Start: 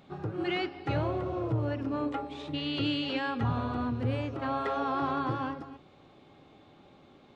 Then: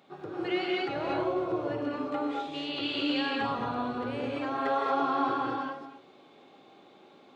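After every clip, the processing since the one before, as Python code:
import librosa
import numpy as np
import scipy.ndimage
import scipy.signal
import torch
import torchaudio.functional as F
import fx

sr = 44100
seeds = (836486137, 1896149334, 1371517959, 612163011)

y = scipy.signal.sosfilt(scipy.signal.butter(2, 280.0, 'highpass', fs=sr, output='sos'), x)
y = fx.rev_gated(y, sr, seeds[0], gate_ms=250, shape='rising', drr_db=-2.5)
y = F.gain(torch.from_numpy(y), -2.0).numpy()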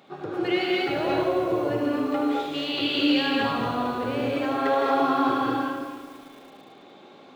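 y = fx.dynamic_eq(x, sr, hz=1100.0, q=1.3, threshold_db=-42.0, ratio=4.0, max_db=-4)
y = fx.echo_feedback(y, sr, ms=75, feedback_pct=57, wet_db=-8.0)
y = fx.echo_crushed(y, sr, ms=222, feedback_pct=55, bits=8, wet_db=-14.0)
y = F.gain(torch.from_numpy(y), 6.5).numpy()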